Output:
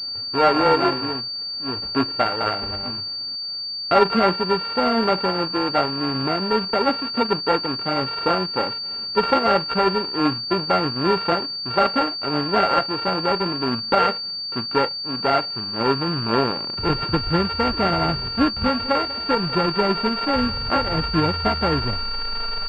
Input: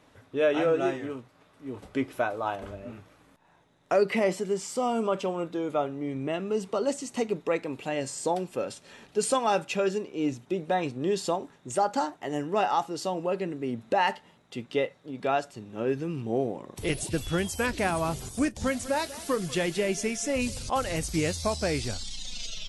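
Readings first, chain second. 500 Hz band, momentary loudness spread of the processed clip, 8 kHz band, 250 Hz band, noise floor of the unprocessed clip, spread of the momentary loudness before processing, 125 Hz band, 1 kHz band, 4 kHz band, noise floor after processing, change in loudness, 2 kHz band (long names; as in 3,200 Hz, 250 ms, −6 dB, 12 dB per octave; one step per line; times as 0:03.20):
+5.0 dB, 7 LU, below −15 dB, +7.0 dB, −61 dBFS, 9 LU, +8.0 dB, +9.5 dB, +17.0 dB, −30 dBFS, +8.0 dB, +7.0 dB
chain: samples sorted by size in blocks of 32 samples
switching amplifier with a slow clock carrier 4,600 Hz
level +8 dB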